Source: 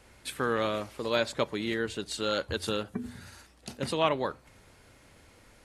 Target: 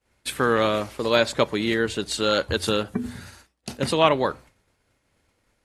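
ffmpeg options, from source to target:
-af "agate=range=0.0224:threshold=0.00631:ratio=3:detection=peak,volume=2.51"

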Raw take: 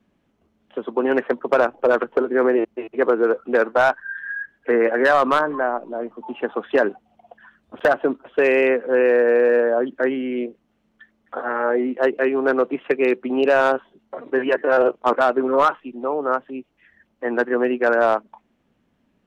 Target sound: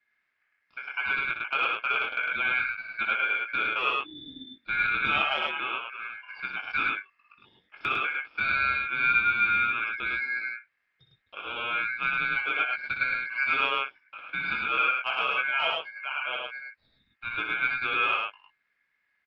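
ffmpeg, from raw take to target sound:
-filter_complex "[0:a]highshelf=f=2300:g=-12,acrossover=split=2000[s0][s1];[s0]flanger=delay=18.5:depth=4.2:speed=0.7[s2];[s1]acompressor=threshold=0.00631:ratio=6[s3];[s2][s3]amix=inputs=2:normalize=0,aeval=exprs='val(0)*sin(2*PI*1900*n/s)':c=same,aecho=1:1:61.22|105:0.447|0.794,volume=0.562"

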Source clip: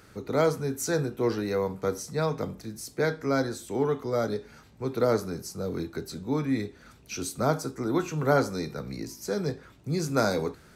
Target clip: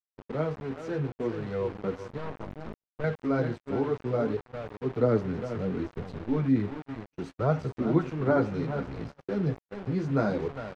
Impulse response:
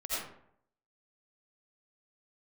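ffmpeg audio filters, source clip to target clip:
-filter_complex "[0:a]asettb=1/sr,asplit=3[s0][s1][s2];[s0]atrim=end=5.844[s3];[s1]atrim=start=5.84:end=6.37,asetpts=PTS-STARTPTS,afade=t=in:d=0.004:c=qsin,afade=t=out:st=0.526:d=0.004:c=qsin,aeval=exprs='if(lt(val(0),0),0.708*val(0),val(0))':c=same[s4];[s2]atrim=start=6.366[s5];[s3][s4]acrossfade=d=0.004:c1=hsin:c2=qsin[s6];[s6][s5]acrossfade=d=0.004:c1=qsin:c2=hsin,asettb=1/sr,asplit=3[s7][s8][s9];[s7]atrim=end=7.574[s10];[s8]atrim=start=7.57:end=7.99,asetpts=PTS-STARTPTS,afade=t=in:d=0.004:c=qsin,afade=t=out:st=0.416:d=0.004:c=qsin,equalizer=f=85:w=0.34:g=4[s11];[s9]atrim=start=7.986[s12];[s10][s11]acrossfade=d=0.004:c1=hsin:c2=qsin[s13];[s13][s12]acrossfade=d=0.004:c1=qsin:c2=hsin,aecho=1:1:404|808|1212:0.316|0.0664|0.0139,flanger=delay=1.4:depth=8.9:regen=-17:speed=0.66:shape=sinusoidal,lowshelf=f=370:g=8.5,asettb=1/sr,asplit=3[s14][s15][s16];[s14]atrim=end=2.184[s17];[s15]atrim=start=2.18:end=3.04,asetpts=PTS-STARTPTS,afade=t=in:d=0.004:c=qsin,afade=t=out:st=0.856:d=0.004:c=qsin,aeval=exprs='(tanh(25.1*val(0)+0.7)-tanh(0.7))/25.1':c=same[s18];[s16]atrim=start=3.036[s19];[s17][s18]acrossfade=d=0.004:c1=hsin:c2=qsin[s20];[s20][s19]acrossfade=d=0.004:c1=qsin:c2=hsin,dynaudnorm=f=860:g=5:m=1.78,aeval=exprs='val(0)*gte(abs(val(0)),0.0282)':c=same,lowpass=2500,agate=range=0.00178:threshold=0.02:ratio=16:detection=peak,volume=0.501"

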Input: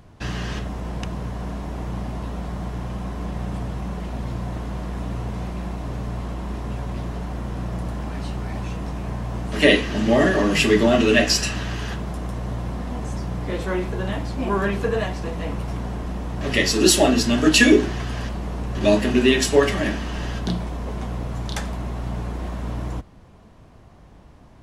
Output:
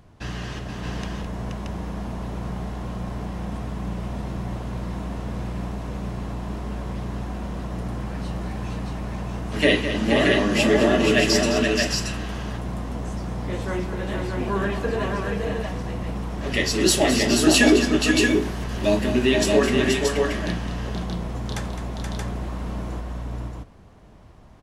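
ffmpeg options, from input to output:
-filter_complex "[0:a]asettb=1/sr,asplit=3[s0][s1][s2];[s0]atrim=end=18.214[s3];[s1]atrim=start=18.21:end=18.64,asetpts=PTS-STARTPTS,afade=t=in:d=0.004:c=qsin,afade=t=out:st=0.426:d=0.004:c=qsin,aemphasis=mode=production:type=50kf[s4];[s2]atrim=start=18.636[s5];[s3][s4]acrossfade=d=0.004:c1=hsin:c2=qsin[s6];[s6][s5]acrossfade=d=0.004:c1=qsin:c2=hsin,aecho=1:1:211|477|627:0.299|0.562|0.668,volume=0.668"

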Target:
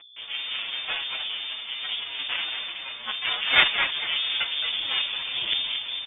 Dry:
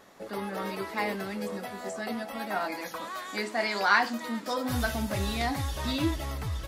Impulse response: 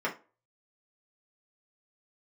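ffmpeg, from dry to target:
-filter_complex "[0:a]aeval=exprs='max(val(0),0)':c=same,asplit=2[s0][s1];[s1]asetrate=58866,aresample=44100,atempo=0.749154,volume=0.794[s2];[s0][s2]amix=inputs=2:normalize=0,areverse,acompressor=mode=upward:threshold=0.00708:ratio=2.5,areverse,highpass=f=160:p=1,asplit=2[s3][s4];[s4]adynamicsmooth=sensitivity=3:basefreq=770,volume=1.12[s5];[s3][s5]amix=inputs=2:normalize=0,acrusher=bits=4:dc=4:mix=0:aa=0.000001,equalizer=f=1900:t=o:w=0.47:g=-3,asplit=5[s6][s7][s8][s9][s10];[s7]adelay=245,afreqshift=44,volume=0.447[s11];[s8]adelay=490,afreqshift=88,volume=0.16[s12];[s9]adelay=735,afreqshift=132,volume=0.0582[s13];[s10]adelay=980,afreqshift=176,volume=0.0209[s14];[s6][s11][s12][s13][s14]amix=inputs=5:normalize=0,aeval=exprs='val(0)+0.00355*(sin(2*PI*60*n/s)+sin(2*PI*2*60*n/s)/2+sin(2*PI*3*60*n/s)/3+sin(2*PI*4*60*n/s)/4+sin(2*PI*5*60*n/s)/5)':c=same,atempo=1.1,lowpass=f=3100:t=q:w=0.5098,lowpass=f=3100:t=q:w=0.6013,lowpass=f=3100:t=q:w=0.9,lowpass=f=3100:t=q:w=2.563,afreqshift=-3600,asplit=2[s15][s16];[s16]adelay=6.8,afreqshift=-2.9[s17];[s15][s17]amix=inputs=2:normalize=1,volume=1.88"

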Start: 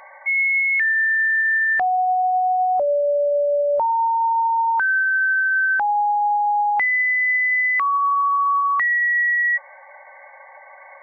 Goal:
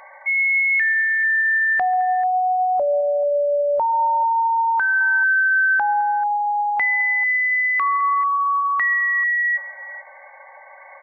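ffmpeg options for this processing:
-af "aecho=1:1:138|212|438:0.106|0.112|0.15"

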